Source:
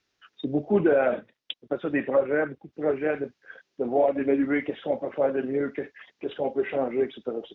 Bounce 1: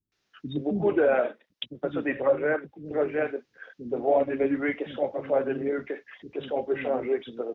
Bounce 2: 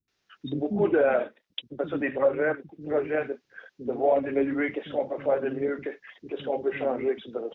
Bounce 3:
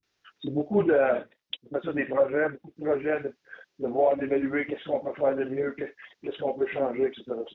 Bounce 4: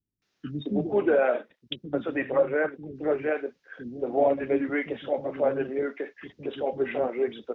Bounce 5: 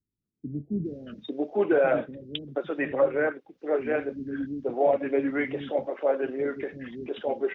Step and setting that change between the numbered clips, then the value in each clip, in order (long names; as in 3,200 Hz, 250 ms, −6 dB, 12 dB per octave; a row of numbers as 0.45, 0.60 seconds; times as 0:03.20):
multiband delay without the direct sound, delay time: 120, 80, 30, 220, 850 milliseconds